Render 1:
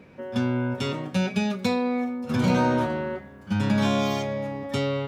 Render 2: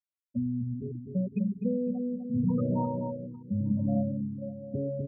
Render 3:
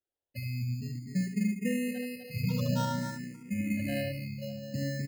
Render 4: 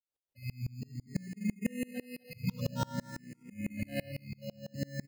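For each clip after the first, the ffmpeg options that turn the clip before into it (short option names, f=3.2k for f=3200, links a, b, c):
-filter_complex "[0:a]afftfilt=real='re*gte(hypot(re,im),0.251)':imag='im*gte(hypot(re,im),0.251)':win_size=1024:overlap=0.75,asplit=2[a][b];[b]adelay=252,lowpass=f=860:p=1,volume=-4.5dB,asplit=2[c][d];[d]adelay=252,lowpass=f=860:p=1,volume=0.49,asplit=2[e][f];[f]adelay=252,lowpass=f=860:p=1,volume=0.49,asplit=2[g][h];[h]adelay=252,lowpass=f=860:p=1,volume=0.49,asplit=2[i][j];[j]adelay=252,lowpass=f=860:p=1,volume=0.49,asplit=2[k][l];[l]adelay=252,lowpass=f=860:p=1,volume=0.49[m];[a][c][e][g][i][k][m]amix=inputs=7:normalize=0,afftfilt=real='re*(1-between(b*sr/1024,660*pow(1900/660,0.5+0.5*sin(2*PI*1.1*pts/sr))/1.41,660*pow(1900/660,0.5+0.5*sin(2*PI*1.1*pts/sr))*1.41))':imag='im*(1-between(b*sr/1024,660*pow(1900/660,0.5+0.5*sin(2*PI*1.1*pts/sr))/1.41,660*pow(1900/660,0.5+0.5*sin(2*PI*1.1*pts/sr))*1.41))':win_size=1024:overlap=0.75,volume=-4.5dB"
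-filter_complex "[0:a]acrusher=samples=19:mix=1:aa=0.000001,asplit=2[a][b];[b]aecho=0:1:72:0.422[c];[a][c]amix=inputs=2:normalize=0,asplit=2[d][e];[e]afreqshift=0.52[f];[d][f]amix=inputs=2:normalize=1"
-af "aeval=exprs='val(0)*pow(10,-30*if(lt(mod(-6*n/s,1),2*abs(-6)/1000),1-mod(-6*n/s,1)/(2*abs(-6)/1000),(mod(-6*n/s,1)-2*abs(-6)/1000)/(1-2*abs(-6)/1000))/20)':c=same,volume=2.5dB"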